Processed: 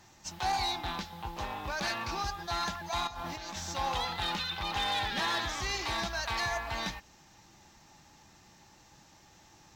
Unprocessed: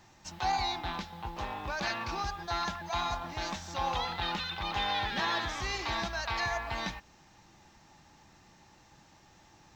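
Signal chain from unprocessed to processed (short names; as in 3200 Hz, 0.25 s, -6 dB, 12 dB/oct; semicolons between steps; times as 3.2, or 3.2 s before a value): high shelf 5600 Hz +7.5 dB; 3.07–3.73 negative-ratio compressor -40 dBFS, ratio -1; one-sided clip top -28 dBFS; Vorbis 64 kbps 48000 Hz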